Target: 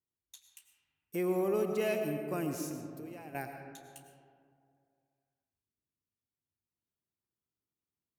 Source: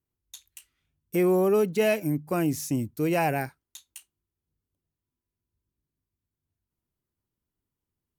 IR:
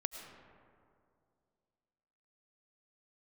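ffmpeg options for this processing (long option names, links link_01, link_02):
-filter_complex "[0:a]highpass=frequency=150:poles=1,asettb=1/sr,asplit=3[link_01][link_02][link_03];[link_01]atrim=end=2.694[link_04];[link_02]atrim=start=2.69:end=3.35,asetpts=PTS-STARTPTS,afade=type=in:duration=0.004:curve=qsin,afade=type=out:start_time=0.656:duration=0.004:curve=qsin,acompressor=threshold=-37dB:ratio=16[link_05];[link_03]atrim=start=3.346[link_06];[link_04][link_05]acrossfade=duration=0.004:curve1=hsin:curve2=qsin[link_07];[link_07][link_06]acrossfade=duration=0.004:curve1=qsin:curve2=hsin[link_08];[1:a]atrim=start_sample=2205[link_09];[link_08][link_09]afir=irnorm=-1:irlink=0,volume=-8dB"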